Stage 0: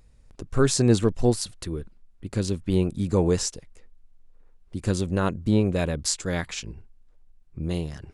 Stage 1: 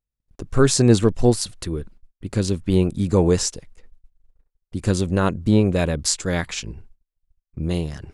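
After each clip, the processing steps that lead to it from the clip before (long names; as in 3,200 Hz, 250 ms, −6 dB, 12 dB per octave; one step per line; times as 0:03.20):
noise gate −47 dBFS, range −36 dB
level +4.5 dB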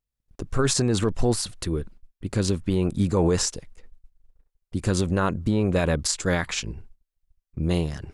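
dynamic equaliser 1,200 Hz, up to +5 dB, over −35 dBFS, Q 0.87
brickwall limiter −12.5 dBFS, peak gain reduction 11 dB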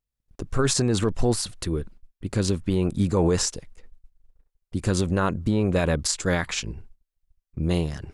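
no processing that can be heard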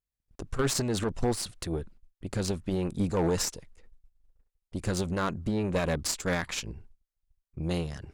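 harmonic generator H 2 −10 dB, 6 −28 dB, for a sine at −12 dBFS
gain into a clipping stage and back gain 13 dB
level −5.5 dB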